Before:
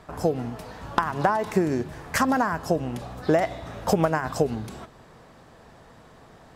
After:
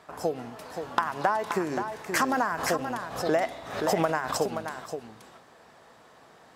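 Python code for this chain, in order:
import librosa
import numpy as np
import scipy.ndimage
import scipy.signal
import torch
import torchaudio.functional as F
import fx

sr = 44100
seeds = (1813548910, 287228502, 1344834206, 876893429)

y = fx.highpass(x, sr, hz=110.0, slope=6)
y = fx.low_shelf(y, sr, hz=270.0, db=-11.5)
y = y + 10.0 ** (-7.5 / 20.0) * np.pad(y, (int(526 * sr / 1000.0), 0))[:len(y)]
y = fx.pre_swell(y, sr, db_per_s=80.0, at=(2.12, 4.36), fade=0.02)
y = y * 10.0 ** (-1.5 / 20.0)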